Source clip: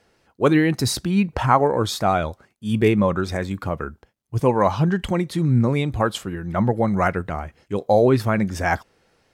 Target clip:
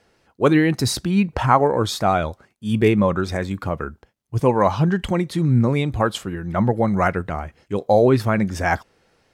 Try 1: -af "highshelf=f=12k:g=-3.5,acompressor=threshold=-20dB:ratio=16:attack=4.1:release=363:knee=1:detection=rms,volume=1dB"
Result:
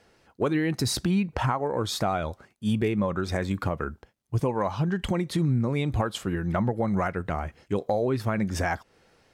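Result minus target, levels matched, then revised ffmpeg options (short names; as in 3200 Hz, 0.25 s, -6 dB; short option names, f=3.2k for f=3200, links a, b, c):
compressor: peak gain reduction +14.5 dB
-af "highshelf=f=12k:g=-3.5,volume=1dB"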